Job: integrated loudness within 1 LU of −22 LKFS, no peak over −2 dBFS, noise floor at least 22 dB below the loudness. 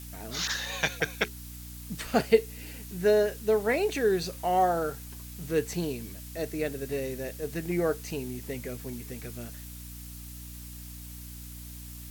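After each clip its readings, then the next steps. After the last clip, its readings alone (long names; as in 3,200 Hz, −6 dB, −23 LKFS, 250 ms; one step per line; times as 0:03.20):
mains hum 60 Hz; hum harmonics up to 300 Hz; level of the hum −41 dBFS; background noise floor −43 dBFS; target noise floor −52 dBFS; integrated loudness −29.5 LKFS; sample peak −8.0 dBFS; target loudness −22.0 LKFS
→ mains-hum notches 60/120/180/240/300 Hz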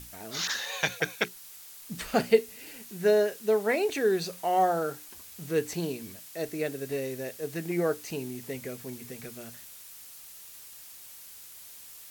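mains hum none found; background noise floor −48 dBFS; target noise floor −52 dBFS
→ noise reduction from a noise print 6 dB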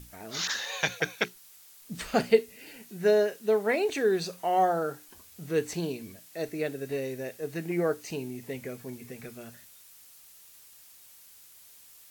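background noise floor −54 dBFS; integrated loudness −29.5 LKFS; sample peak −8.5 dBFS; target loudness −22.0 LKFS
→ level +7.5 dB
brickwall limiter −2 dBFS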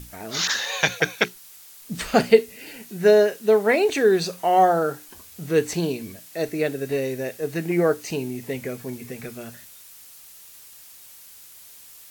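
integrated loudness −22.0 LKFS; sample peak −2.0 dBFS; background noise floor −46 dBFS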